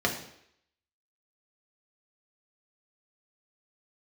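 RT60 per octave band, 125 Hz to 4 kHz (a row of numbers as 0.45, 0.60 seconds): 0.60, 0.65, 0.75, 0.70, 0.75, 0.75 seconds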